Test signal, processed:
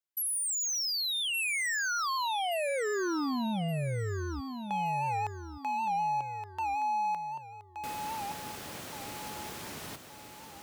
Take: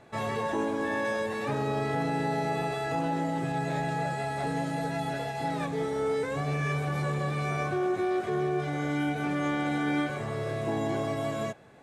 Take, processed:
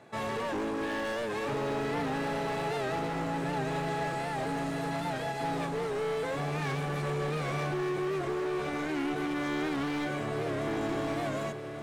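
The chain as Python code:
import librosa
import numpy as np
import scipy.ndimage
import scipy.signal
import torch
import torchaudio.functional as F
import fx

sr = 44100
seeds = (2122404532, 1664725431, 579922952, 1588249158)

p1 = scipy.signal.sosfilt(scipy.signal.butter(2, 120.0, 'highpass', fs=sr, output='sos'), x)
p2 = fx.dynamic_eq(p1, sr, hz=350.0, q=2.4, threshold_db=-41.0, ratio=4.0, max_db=4)
p3 = np.clip(p2, -10.0 ** (-30.5 / 20.0), 10.0 ** (-30.5 / 20.0))
p4 = p3 + fx.echo_feedback(p3, sr, ms=1171, feedback_pct=39, wet_db=-7.5, dry=0)
y = fx.record_warp(p4, sr, rpm=78.0, depth_cents=100.0)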